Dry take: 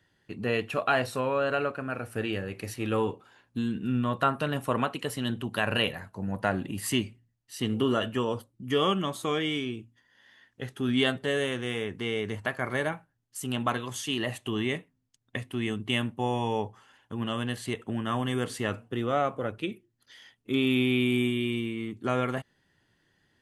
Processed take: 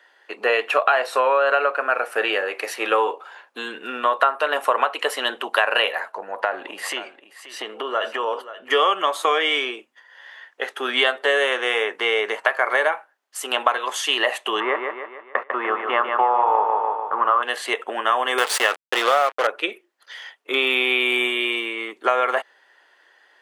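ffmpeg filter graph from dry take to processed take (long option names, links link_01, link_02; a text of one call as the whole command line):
ffmpeg -i in.wav -filter_complex "[0:a]asettb=1/sr,asplit=3[link_01][link_02][link_03];[link_01]atrim=end=6.124[link_04];[link_02]atrim=start=6.12:end=8.71,asetpts=PTS-STARTPTS,afade=type=in:duration=0.004:curve=qsin,afade=type=out:start_time=2.586:duration=0.004:curve=qsin,lowpass=frequency=3800:poles=1,acompressor=threshold=-31dB:ratio=6:attack=3.2:release=140:knee=1:detection=peak,aecho=1:1:530:0.188,atrim=end_sample=114219[link_05];[link_03]atrim=start=8.706[link_06];[link_04][link_05]acrossfade=duration=0.004:curve1=hsin:curve2=qsin[link_07];[link_07][link_06]acrossfade=duration=0.004:curve1=qsin:curve2=hsin,asettb=1/sr,asplit=3[link_08][link_09][link_10];[link_08]atrim=end=14.604[link_11];[link_09]atrim=start=14.6:end=17.43,asetpts=PTS-STARTPTS,afade=type=in:duration=0.004:curve=qsin,afade=type=out:start_time=2.826:duration=0.004:curve=qsin,aeval=exprs='sgn(val(0))*max(abs(val(0))-0.00531,0)':channel_layout=same,lowpass=frequency=1200:width_type=q:width=3.7,aecho=1:1:148|296|444|592|740|888:0.501|0.251|0.125|0.0626|0.0313|0.0157,atrim=end_sample=124803[link_12];[link_10]atrim=start=17.426[link_13];[link_11][link_12]acrossfade=duration=0.004:curve1=hsin:curve2=qsin[link_14];[link_14][link_13]acrossfade=duration=0.004:curve1=qsin:curve2=hsin,asettb=1/sr,asplit=3[link_15][link_16][link_17];[link_15]atrim=end=18.384[link_18];[link_16]atrim=start=18.38:end=19.47,asetpts=PTS-STARTPTS,afade=type=in:duration=0.004:curve=qsin,afade=type=out:start_time=1.086:duration=0.004:curve=qsin,highpass=frequency=72:width=0.5412,highpass=frequency=72:width=1.3066,highshelf=frequency=2300:gain=11,acrusher=bits=4:mix=0:aa=0.5[link_19];[link_17]atrim=start=19.466[link_20];[link_18][link_19]acrossfade=duration=0.004:curve1=hsin:curve2=qsin[link_21];[link_21][link_20]acrossfade=duration=0.004:curve1=qsin:curve2=hsin,highpass=frequency=450:width=0.5412,highpass=frequency=450:width=1.3066,equalizer=frequency=1100:width=0.32:gain=13,acompressor=threshold=-20dB:ratio=5,volume=5dB" out.wav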